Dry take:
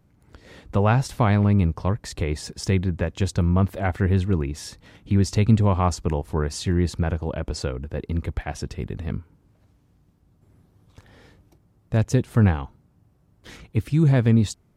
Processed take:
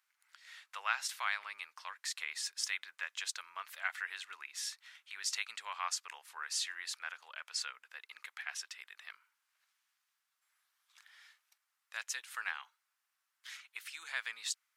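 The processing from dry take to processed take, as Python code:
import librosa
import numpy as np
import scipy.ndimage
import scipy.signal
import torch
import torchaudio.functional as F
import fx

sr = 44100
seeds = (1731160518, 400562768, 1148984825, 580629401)

y = scipy.signal.sosfilt(scipy.signal.butter(4, 1400.0, 'highpass', fs=sr, output='sos'), x)
y = F.gain(torch.from_numpy(y), -2.5).numpy()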